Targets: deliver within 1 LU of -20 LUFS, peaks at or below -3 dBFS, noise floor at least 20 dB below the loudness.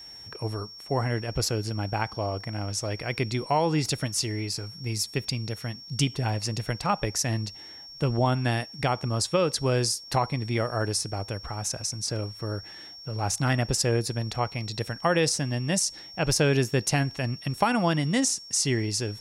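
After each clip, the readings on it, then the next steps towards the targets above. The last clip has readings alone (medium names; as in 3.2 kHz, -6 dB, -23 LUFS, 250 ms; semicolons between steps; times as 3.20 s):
steady tone 5.5 kHz; tone level -42 dBFS; loudness -27.5 LUFS; peak level -9.5 dBFS; loudness target -20.0 LUFS
-> band-stop 5.5 kHz, Q 30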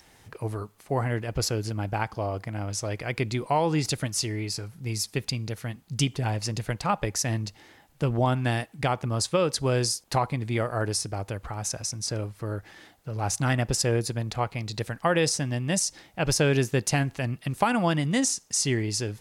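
steady tone not found; loudness -27.5 LUFS; peak level -9.5 dBFS; loudness target -20.0 LUFS
-> trim +7.5 dB; peak limiter -3 dBFS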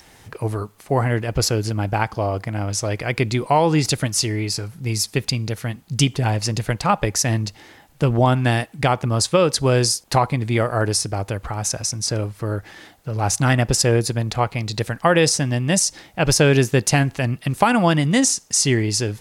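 loudness -20.0 LUFS; peak level -3.0 dBFS; noise floor -50 dBFS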